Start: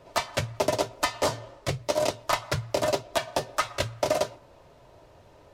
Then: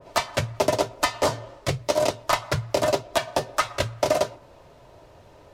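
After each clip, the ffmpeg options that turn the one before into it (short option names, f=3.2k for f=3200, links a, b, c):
-af "adynamicequalizer=threshold=0.01:dfrequency=2000:dqfactor=0.7:tfrequency=2000:tqfactor=0.7:attack=5:release=100:ratio=0.375:range=2.5:mode=cutabove:tftype=highshelf,volume=3.5dB"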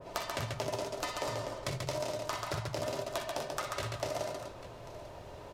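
-af "alimiter=limit=-17.5dB:level=0:latency=1:release=72,acompressor=threshold=-35dB:ratio=5,aecho=1:1:46|58|63|137|247|844:0.251|0.266|0.266|0.631|0.422|0.15"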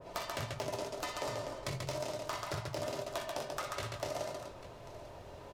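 -filter_complex "[0:a]asplit=2[a][b];[b]aeval=exprs='(mod(13.3*val(0)+1,2)-1)/13.3':c=same,volume=-8dB[c];[a][c]amix=inputs=2:normalize=0,asplit=2[d][e];[e]adelay=22,volume=-12dB[f];[d][f]amix=inputs=2:normalize=0,volume=-5.5dB"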